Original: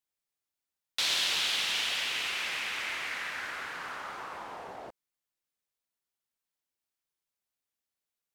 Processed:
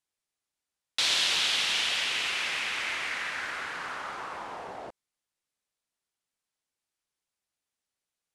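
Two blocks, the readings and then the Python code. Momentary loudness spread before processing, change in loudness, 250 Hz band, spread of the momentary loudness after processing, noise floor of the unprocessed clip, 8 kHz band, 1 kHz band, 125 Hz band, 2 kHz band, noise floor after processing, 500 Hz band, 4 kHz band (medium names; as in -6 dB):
16 LU, +3.0 dB, +3.0 dB, 16 LU, under -85 dBFS, +3.0 dB, +3.0 dB, +3.0 dB, +3.0 dB, under -85 dBFS, +3.0 dB, +3.0 dB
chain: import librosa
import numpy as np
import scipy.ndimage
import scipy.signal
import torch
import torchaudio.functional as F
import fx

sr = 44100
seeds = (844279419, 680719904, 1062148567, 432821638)

y = scipy.signal.sosfilt(scipy.signal.butter(4, 11000.0, 'lowpass', fs=sr, output='sos'), x)
y = F.gain(torch.from_numpy(y), 3.0).numpy()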